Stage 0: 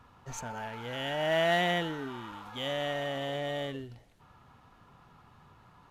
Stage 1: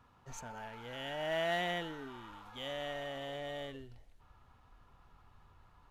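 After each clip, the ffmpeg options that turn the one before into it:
ffmpeg -i in.wav -af "asubboost=boost=8.5:cutoff=54,volume=-7dB" out.wav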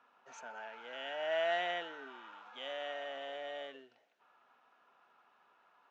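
ffmpeg -i in.wav -af "highpass=frequency=280:width=0.5412,highpass=frequency=280:width=1.3066,equalizer=frequency=310:width_type=q:width=4:gain=-6,equalizer=frequency=660:width_type=q:width=4:gain=5,equalizer=frequency=1500:width_type=q:width=4:gain=7,equalizer=frequency=2600:width_type=q:width=4:gain=5,equalizer=frequency=4500:width_type=q:width=4:gain=-4,lowpass=frequency=6100:width=0.5412,lowpass=frequency=6100:width=1.3066,volume=-3dB" out.wav

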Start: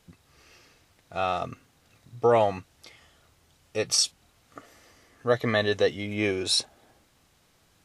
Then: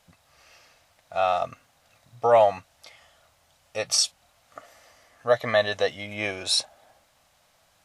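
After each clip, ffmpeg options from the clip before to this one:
ffmpeg -i in.wav -af "lowshelf=frequency=490:width_type=q:width=3:gain=-6.5,volume=1dB" out.wav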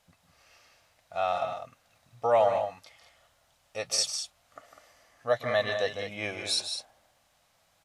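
ffmpeg -i in.wav -af "aecho=1:1:151.6|201.2:0.355|0.355,volume=-5.5dB" out.wav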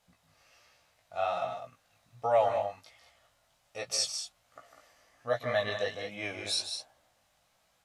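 ffmpeg -i in.wav -af "flanger=delay=15.5:depth=4.4:speed=1.3" out.wav

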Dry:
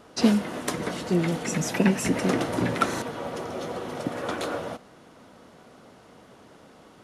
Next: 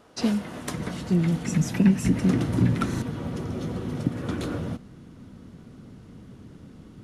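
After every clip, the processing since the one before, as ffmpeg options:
ffmpeg -i in.wav -filter_complex "[0:a]asubboost=boost=12:cutoff=200,asplit=2[link_01][link_02];[link_02]alimiter=limit=-10.5dB:level=0:latency=1:release=355,volume=-2dB[link_03];[link_01][link_03]amix=inputs=2:normalize=0,volume=-9dB" out.wav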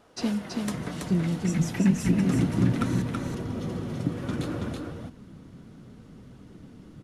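ffmpeg -i in.wav -af "flanger=delay=1.1:depth=6.7:regen=68:speed=0.63:shape=triangular,aecho=1:1:328:0.668,volume=1.5dB" out.wav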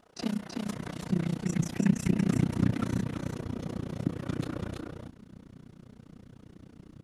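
ffmpeg -i in.wav -af "tremolo=f=30:d=0.974" out.wav

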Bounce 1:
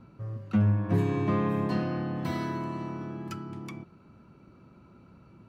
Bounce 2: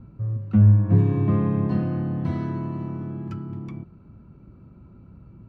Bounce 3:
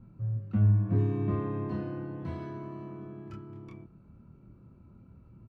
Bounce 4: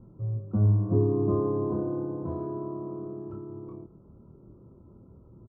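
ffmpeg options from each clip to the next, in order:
ffmpeg -i in.wav -af "aemphasis=mode=reproduction:type=riaa,volume=-2.5dB" out.wav
ffmpeg -i in.wav -filter_complex "[0:a]asplit=2[link_01][link_02];[link_02]adelay=26,volume=-2dB[link_03];[link_01][link_03]amix=inputs=2:normalize=0,volume=-9dB" out.wav
ffmpeg -i in.wav -af "firequalizer=gain_entry='entry(220,0);entry(390,10);entry(710,3);entry(1100,3);entry(1900,-25)':delay=0.05:min_phase=1,volume=1dB" out.wav

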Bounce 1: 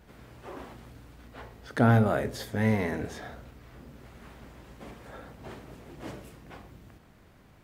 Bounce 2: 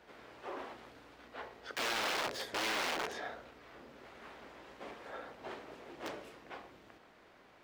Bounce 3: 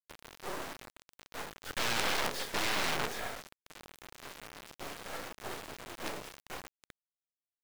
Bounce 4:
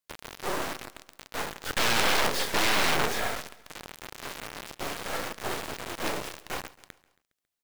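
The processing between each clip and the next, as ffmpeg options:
ffmpeg -i in.wav -filter_complex "[0:a]aeval=exprs='(tanh(14.1*val(0)+0.55)-tanh(0.55))/14.1':channel_layout=same,aeval=exprs='(mod(39.8*val(0)+1,2)-1)/39.8':channel_layout=same,acrossover=split=310 5700:gain=0.1 1 0.224[link_01][link_02][link_03];[link_01][link_02][link_03]amix=inputs=3:normalize=0,volume=3.5dB" out.wav
ffmpeg -i in.wav -af "acrusher=bits=5:dc=4:mix=0:aa=0.000001,volume=7dB" out.wav
ffmpeg -i in.wav -filter_complex "[0:a]asplit=2[link_01][link_02];[link_02]volume=28.5dB,asoftclip=hard,volume=-28.5dB,volume=-3.5dB[link_03];[link_01][link_03]amix=inputs=2:normalize=0,aecho=1:1:137|274|411|548:0.1|0.051|0.026|0.0133,volume=4.5dB" out.wav

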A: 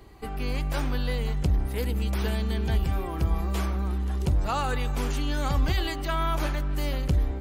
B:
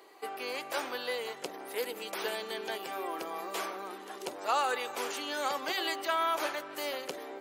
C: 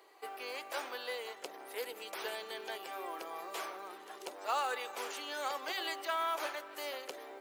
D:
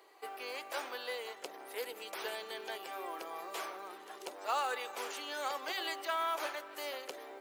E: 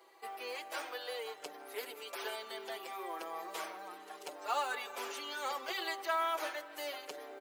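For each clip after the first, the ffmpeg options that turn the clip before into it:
ffmpeg -i in.wav -af "highpass=frequency=390:width=0.5412,highpass=frequency=390:width=1.3066" out.wav
ffmpeg -i in.wav -af "bass=frequency=250:gain=-15,treble=frequency=4000:gain=-1,acrusher=bits=6:mode=log:mix=0:aa=0.000001,volume=-4.5dB" out.wav
ffmpeg -i in.wav -af anull out.wav
ffmpeg -i in.wav -filter_complex "[0:a]asplit=2[link_01][link_02];[link_02]adelay=5.6,afreqshift=-0.35[link_03];[link_01][link_03]amix=inputs=2:normalize=1,volume=2.5dB" out.wav

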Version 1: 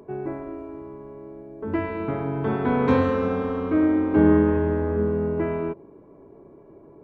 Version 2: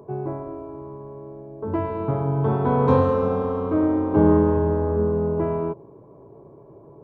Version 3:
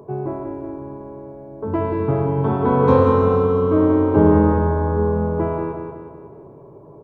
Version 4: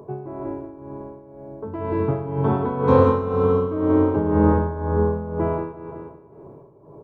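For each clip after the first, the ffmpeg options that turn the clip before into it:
ffmpeg -i in.wav -af "equalizer=frequency=125:width_type=o:width=1:gain=12,equalizer=frequency=250:width_type=o:width=1:gain=-3,equalizer=frequency=500:width_type=o:width=1:gain=5,equalizer=frequency=1000:width_type=o:width=1:gain=8,equalizer=frequency=2000:width_type=o:width=1:gain=-10,volume=-2.5dB" out.wav
ffmpeg -i in.wav -af "aecho=1:1:184|368|552|736|920|1104:0.501|0.246|0.12|0.059|0.0289|0.0142,volume=3dB" out.wav
ffmpeg -i in.wav -af "tremolo=f=2:d=0.69" out.wav

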